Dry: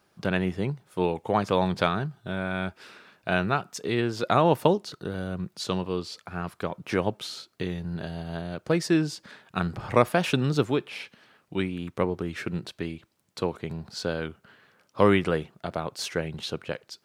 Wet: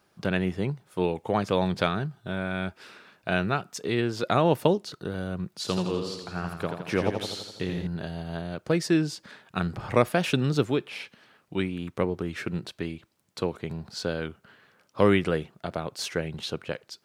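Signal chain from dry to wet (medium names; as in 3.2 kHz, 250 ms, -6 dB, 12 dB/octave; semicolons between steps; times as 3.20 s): dynamic bell 980 Hz, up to -4 dB, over -36 dBFS, Q 1.6; 5.52–7.87 s: modulated delay 83 ms, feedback 60%, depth 65 cents, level -6 dB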